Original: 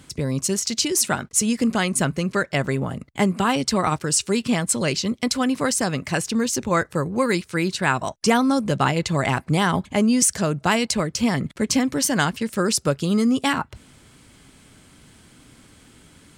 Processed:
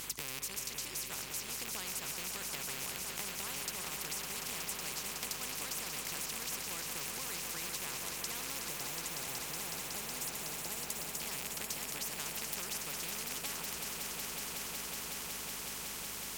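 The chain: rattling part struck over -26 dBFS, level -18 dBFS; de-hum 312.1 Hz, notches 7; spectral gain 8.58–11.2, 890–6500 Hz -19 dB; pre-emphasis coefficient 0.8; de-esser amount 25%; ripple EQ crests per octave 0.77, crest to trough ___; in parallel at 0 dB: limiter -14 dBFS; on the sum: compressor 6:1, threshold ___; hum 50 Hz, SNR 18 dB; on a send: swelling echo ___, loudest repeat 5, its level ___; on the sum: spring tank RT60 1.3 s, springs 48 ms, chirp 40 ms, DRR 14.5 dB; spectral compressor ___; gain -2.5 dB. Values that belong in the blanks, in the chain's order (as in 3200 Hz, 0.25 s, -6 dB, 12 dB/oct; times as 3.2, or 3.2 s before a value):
9 dB, -33 dBFS, 0.185 s, -12 dB, 4:1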